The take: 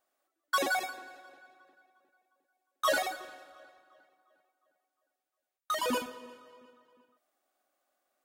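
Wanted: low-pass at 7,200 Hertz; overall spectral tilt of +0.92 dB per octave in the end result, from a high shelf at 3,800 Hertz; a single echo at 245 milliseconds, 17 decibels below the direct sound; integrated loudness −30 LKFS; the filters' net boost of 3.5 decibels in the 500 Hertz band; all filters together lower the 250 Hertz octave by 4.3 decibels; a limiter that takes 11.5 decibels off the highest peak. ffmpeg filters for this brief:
ffmpeg -i in.wav -af "lowpass=7200,equalizer=frequency=250:width_type=o:gain=-6.5,equalizer=frequency=500:width_type=o:gain=5.5,highshelf=frequency=3800:gain=-8,alimiter=level_in=4dB:limit=-24dB:level=0:latency=1,volume=-4dB,aecho=1:1:245:0.141,volume=8.5dB" out.wav

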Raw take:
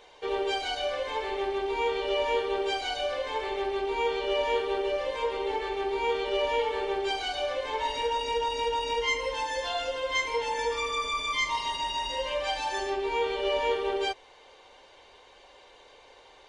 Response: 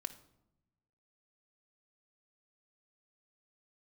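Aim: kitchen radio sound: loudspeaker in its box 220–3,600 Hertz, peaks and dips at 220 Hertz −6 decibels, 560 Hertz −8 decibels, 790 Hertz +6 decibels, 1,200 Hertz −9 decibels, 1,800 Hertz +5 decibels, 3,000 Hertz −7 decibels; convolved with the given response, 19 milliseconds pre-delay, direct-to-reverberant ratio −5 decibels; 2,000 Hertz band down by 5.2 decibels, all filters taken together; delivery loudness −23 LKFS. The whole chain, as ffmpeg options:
-filter_complex "[0:a]equalizer=frequency=2000:width_type=o:gain=-6.5,asplit=2[link_01][link_02];[1:a]atrim=start_sample=2205,adelay=19[link_03];[link_02][link_03]afir=irnorm=-1:irlink=0,volume=7.5dB[link_04];[link_01][link_04]amix=inputs=2:normalize=0,highpass=220,equalizer=frequency=220:width_type=q:width=4:gain=-6,equalizer=frequency=560:width_type=q:width=4:gain=-8,equalizer=frequency=790:width_type=q:width=4:gain=6,equalizer=frequency=1200:width_type=q:width=4:gain=-9,equalizer=frequency=1800:width_type=q:width=4:gain=5,equalizer=frequency=3000:width_type=q:width=4:gain=-7,lowpass=frequency=3600:width=0.5412,lowpass=frequency=3600:width=1.3066,volume=3.5dB"

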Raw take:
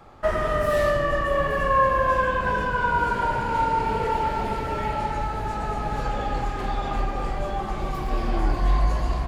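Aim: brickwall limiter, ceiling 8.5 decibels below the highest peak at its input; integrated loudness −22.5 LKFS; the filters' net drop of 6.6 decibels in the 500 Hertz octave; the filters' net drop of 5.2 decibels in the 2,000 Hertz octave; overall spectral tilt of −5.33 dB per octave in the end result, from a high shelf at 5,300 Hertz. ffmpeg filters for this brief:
ffmpeg -i in.wav -af "equalizer=frequency=500:width_type=o:gain=-7.5,equalizer=frequency=2000:width_type=o:gain=-5.5,highshelf=frequency=5300:gain=-9,volume=8dB,alimiter=limit=-12.5dB:level=0:latency=1" out.wav

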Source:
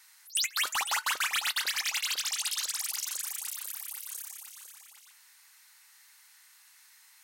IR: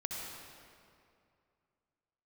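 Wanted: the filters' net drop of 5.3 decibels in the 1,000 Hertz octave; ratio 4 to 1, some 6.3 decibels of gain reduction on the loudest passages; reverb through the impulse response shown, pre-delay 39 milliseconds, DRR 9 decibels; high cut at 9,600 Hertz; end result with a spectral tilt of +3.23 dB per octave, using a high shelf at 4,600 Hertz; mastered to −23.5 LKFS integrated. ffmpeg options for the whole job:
-filter_complex "[0:a]lowpass=9600,equalizer=frequency=1000:width_type=o:gain=-7.5,highshelf=frequency=4600:gain=5.5,acompressor=threshold=-32dB:ratio=4,asplit=2[link_01][link_02];[1:a]atrim=start_sample=2205,adelay=39[link_03];[link_02][link_03]afir=irnorm=-1:irlink=0,volume=-10.5dB[link_04];[link_01][link_04]amix=inputs=2:normalize=0,volume=10dB"

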